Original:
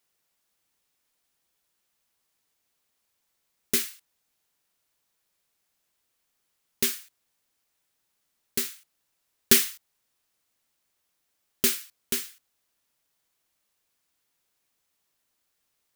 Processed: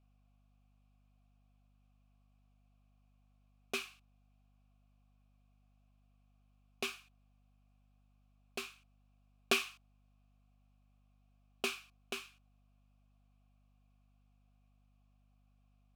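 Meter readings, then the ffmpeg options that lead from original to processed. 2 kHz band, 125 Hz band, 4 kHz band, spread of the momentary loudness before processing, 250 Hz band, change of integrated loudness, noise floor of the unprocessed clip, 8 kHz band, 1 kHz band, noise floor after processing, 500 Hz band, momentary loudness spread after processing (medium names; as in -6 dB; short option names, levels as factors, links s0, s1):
-5.0 dB, -13.5 dB, -10.0 dB, 15 LU, -13.5 dB, -14.0 dB, -77 dBFS, -20.0 dB, 0.0 dB, -70 dBFS, -7.5 dB, 16 LU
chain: -filter_complex "[0:a]asplit=3[s0][s1][s2];[s0]bandpass=f=730:t=q:w=8,volume=1[s3];[s1]bandpass=f=1090:t=q:w=8,volume=0.501[s4];[s2]bandpass=f=2440:t=q:w=8,volume=0.355[s5];[s3][s4][s5]amix=inputs=3:normalize=0,aeval=exprs='val(0)+0.000126*(sin(2*PI*50*n/s)+sin(2*PI*2*50*n/s)/2+sin(2*PI*3*50*n/s)/3+sin(2*PI*4*50*n/s)/4+sin(2*PI*5*50*n/s)/5)':c=same,volume=2.99"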